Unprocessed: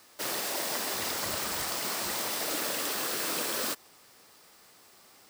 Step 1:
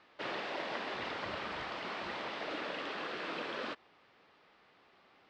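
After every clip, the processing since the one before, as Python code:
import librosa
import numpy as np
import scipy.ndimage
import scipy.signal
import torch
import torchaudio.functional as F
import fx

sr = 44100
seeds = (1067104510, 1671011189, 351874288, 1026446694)

y = scipy.signal.sosfilt(scipy.signal.butter(4, 3300.0, 'lowpass', fs=sr, output='sos'), x)
y = fx.low_shelf(y, sr, hz=120.0, db=-4.5)
y = fx.rider(y, sr, range_db=10, speed_s=2.0)
y = y * 10.0 ** (-3.5 / 20.0)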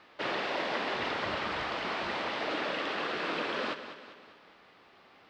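y = fx.echo_feedback(x, sr, ms=198, feedback_pct=49, wet_db=-11)
y = y * 10.0 ** (6.0 / 20.0)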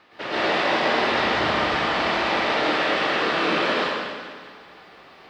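y = fx.rev_plate(x, sr, seeds[0], rt60_s=1.3, hf_ratio=0.9, predelay_ms=100, drr_db=-9.0)
y = y * 10.0 ** (2.0 / 20.0)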